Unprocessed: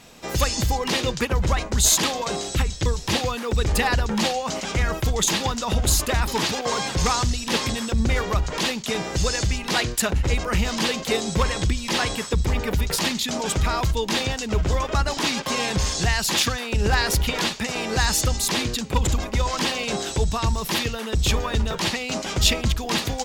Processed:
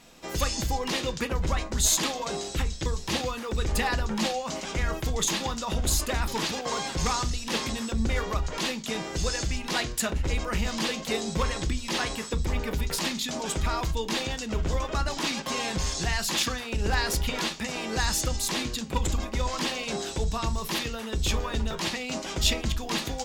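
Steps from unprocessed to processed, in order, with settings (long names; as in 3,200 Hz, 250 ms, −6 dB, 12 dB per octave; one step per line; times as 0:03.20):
on a send: low-pass with resonance 7,600 Hz, resonance Q 1.9 + convolution reverb RT60 0.20 s, pre-delay 3 ms, DRR 9.5 dB
on the sum: level −6 dB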